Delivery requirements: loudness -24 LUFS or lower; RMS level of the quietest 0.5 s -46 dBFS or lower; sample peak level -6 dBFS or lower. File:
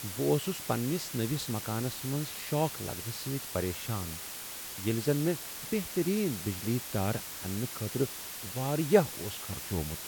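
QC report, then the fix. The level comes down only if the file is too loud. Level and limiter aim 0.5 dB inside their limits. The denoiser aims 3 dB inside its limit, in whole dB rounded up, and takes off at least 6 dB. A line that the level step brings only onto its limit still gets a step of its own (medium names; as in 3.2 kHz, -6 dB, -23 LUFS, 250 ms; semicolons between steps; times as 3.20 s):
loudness -32.5 LUFS: pass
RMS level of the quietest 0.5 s -42 dBFS: fail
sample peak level -9.5 dBFS: pass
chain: noise reduction 7 dB, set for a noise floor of -42 dBFS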